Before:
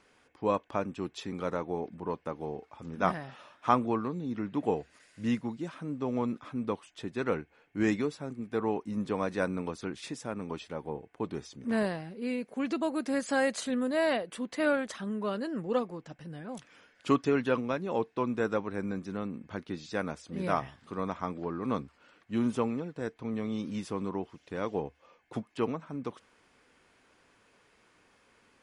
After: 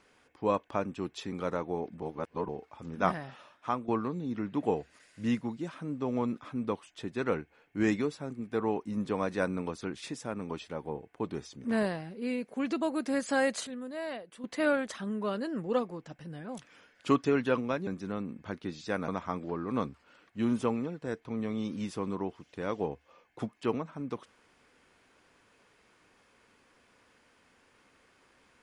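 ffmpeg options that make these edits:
-filter_complex "[0:a]asplit=8[a][b][c][d][e][f][g][h];[a]atrim=end=2.022[i];[b]atrim=start=2.018:end=2.492,asetpts=PTS-STARTPTS,areverse[j];[c]atrim=start=2.488:end=3.88,asetpts=PTS-STARTPTS,afade=t=out:st=0.782:d=0.61:silence=0.251189[k];[d]atrim=start=3.88:end=13.672,asetpts=PTS-STARTPTS,afade=t=in:d=0.004:c=hsin:silence=0.251189[l];[e]atrim=start=13.668:end=14.442,asetpts=PTS-STARTPTS,volume=-10dB[m];[f]atrim=start=14.438:end=17.872[n];[g]atrim=start=18.918:end=20.132[o];[h]atrim=start=21.018[p];[i][j]acrossfade=d=0.004:c1=hsin:c2=hsin[q];[k][l]concat=n=2:v=0:a=1[r];[q][r]acrossfade=d=0.004:c1=hsin:c2=hsin[s];[s][m]acrossfade=d=0.004:c1=hsin:c2=hsin[t];[t][n]acrossfade=d=0.004:c1=hsin:c2=hsin[u];[u][o]acrossfade=d=0.004:c1=hsin:c2=hsin[v];[v][p]acrossfade=d=0.004:c1=hsin:c2=hsin"

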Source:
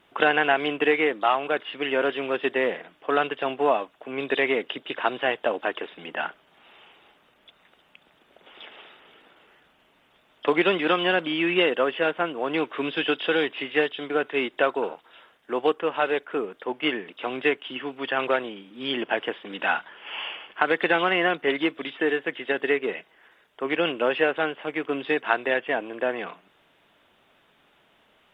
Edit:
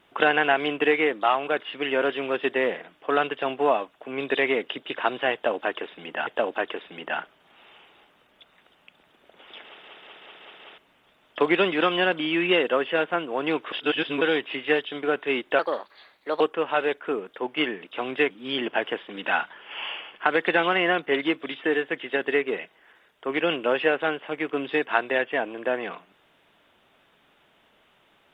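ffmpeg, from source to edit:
-filter_complex "[0:a]asplit=13[a][b][c][d][e][f][g][h][i][j][k][l][m];[a]atrim=end=6.272[n];[b]atrim=start=5.338:end=8.902[o];[c]atrim=start=8.708:end=8.902[p];[d]atrim=start=8.708:end=8.902[q];[e]atrim=start=8.708:end=8.902[r];[f]atrim=start=8.708:end=8.902[s];[g]atrim=start=8.708:end=8.902[t];[h]atrim=start=9.848:end=12.792[u];[i]atrim=start=12.788:end=13.282,asetpts=PTS-STARTPTS,areverse[v];[j]atrim=start=13.278:end=14.664[w];[k]atrim=start=14.66:end=15.66,asetpts=PTS-STARTPTS,asetrate=54243,aresample=44100[x];[l]atrim=start=15.656:end=17.562[y];[m]atrim=start=18.658[z];[n][o]acrossfade=d=0.004:c1=hsin:c2=hsin[aa];[aa][p]acrossfade=d=0.004:c1=hsin:c2=hsin[ab];[ab][q]acrossfade=d=0.004:c1=hsin:c2=hsin[ac];[ac][r]acrossfade=d=0.004:c1=hsin:c2=hsin[ad];[ad][s]acrossfade=d=0.004:c1=hsin:c2=hsin[ae];[ae][t]acrossfade=d=0.004:c1=hsin:c2=hsin[af];[af][u]acrossfade=d=0.004:c1=hsin:c2=hsin[ag];[ag][v]acrossfade=d=0.004:c1=hsin:c2=hsin[ah];[ah][w]acrossfade=d=0.004:c1=hsin:c2=hsin[ai];[ai][x]acrossfade=d=0.004:c1=hsin:c2=hsin[aj];[aj][y]acrossfade=d=0.004:c1=hsin:c2=hsin[ak];[ak][z]acrossfade=d=0.004:c1=hsin:c2=hsin"

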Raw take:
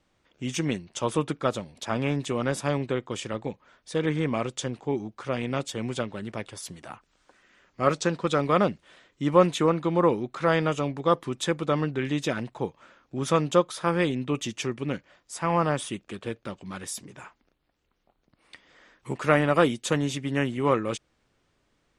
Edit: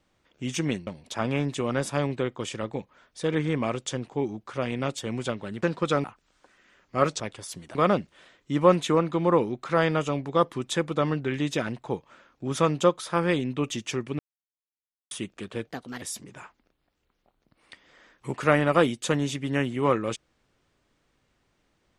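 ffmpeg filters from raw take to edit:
-filter_complex "[0:a]asplit=10[a][b][c][d][e][f][g][h][i][j];[a]atrim=end=0.872[k];[b]atrim=start=1.578:end=6.342[l];[c]atrim=start=8.048:end=8.462[m];[d]atrim=start=6.888:end=8.052[n];[e]atrim=start=6.338:end=6.892[o];[f]atrim=start=8.458:end=14.9,asetpts=PTS-STARTPTS,afade=t=out:st=6.438:d=0.004:c=hsin[p];[g]atrim=start=14.9:end=15.82,asetpts=PTS-STARTPTS,volume=0[q];[h]atrim=start=15.82:end=16.384,asetpts=PTS-STARTPTS,afade=t=in:d=0.004:c=hsin[r];[i]atrim=start=16.38:end=16.83,asetpts=PTS-STARTPTS,asetrate=57330,aresample=44100,atrim=end_sample=15265,asetpts=PTS-STARTPTS[s];[j]atrim=start=16.826[t];[k][l]acrossfade=d=0.004:c1=hsin:c2=hsin[u];[u][m]acrossfade=d=0.004:c1=hsin:c2=hsin[v];[v][n]acrossfade=d=0.004:c1=hsin:c2=hsin[w];[w][o]acrossfade=d=0.004:c1=hsin:c2=hsin[x];[p][q][r]concat=n=3:v=0:a=1[y];[x][y]acrossfade=d=0.004:c1=hsin:c2=hsin[z];[z][s]acrossfade=d=0.004:c1=hsin:c2=hsin[aa];[aa][t]acrossfade=d=0.004:c1=hsin:c2=hsin"

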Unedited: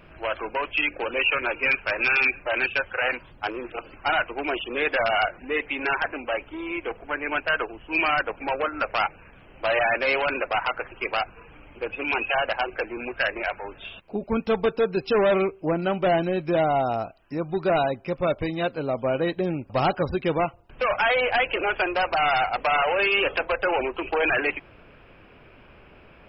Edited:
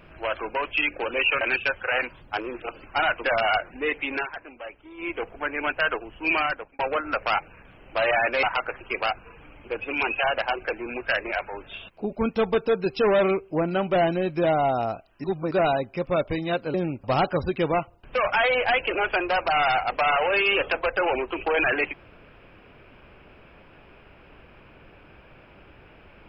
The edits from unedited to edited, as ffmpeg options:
-filter_complex "[0:a]asplit=10[a][b][c][d][e][f][g][h][i][j];[a]atrim=end=1.412[k];[b]atrim=start=2.508:end=4.342[l];[c]atrim=start=4.918:end=5.94,asetpts=PTS-STARTPTS,afade=t=out:st=0.892:d=0.13:c=qsin:silence=0.281838[m];[d]atrim=start=5.94:end=6.65,asetpts=PTS-STARTPTS,volume=-11dB[n];[e]atrim=start=6.65:end=8.47,asetpts=PTS-STARTPTS,afade=t=in:d=0.13:c=qsin:silence=0.281838,afade=t=out:st=1.38:d=0.44[o];[f]atrim=start=8.47:end=10.112,asetpts=PTS-STARTPTS,afade=t=in:d=0.004:c=hsin[p];[g]atrim=start=10.538:end=17.352[q];[h]atrim=start=17.348:end=17.622,asetpts=PTS-STARTPTS,areverse[r];[i]atrim=start=17.618:end=18.852[s];[j]atrim=start=19.398[t];[k][l]acrossfade=d=0.004:c1=hsin:c2=hsin[u];[m][n][o][p]concat=n=4:v=0:a=1[v];[u][v]acrossfade=d=0.004:c1=hsin:c2=hsin[w];[w][q]acrossfade=d=0.004:c1=hsin:c2=hsin[x];[x][r]acrossfade=d=0.004:c1=hsin:c2=hsin[y];[y][s]acrossfade=d=0.004:c1=hsin:c2=hsin[z];[z][t]acrossfade=d=0.004:c1=hsin:c2=hsin"

